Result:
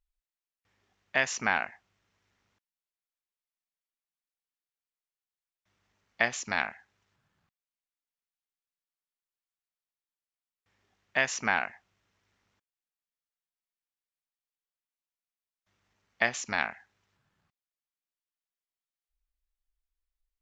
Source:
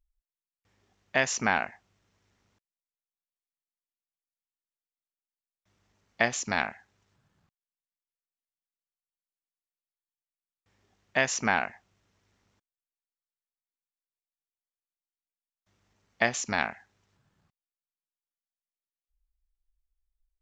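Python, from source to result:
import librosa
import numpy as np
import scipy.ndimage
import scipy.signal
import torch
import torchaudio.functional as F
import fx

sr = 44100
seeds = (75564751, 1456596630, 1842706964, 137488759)

y = fx.peak_eq(x, sr, hz=2000.0, db=6.5, octaves=2.8)
y = F.gain(torch.from_numpy(y), -6.5).numpy()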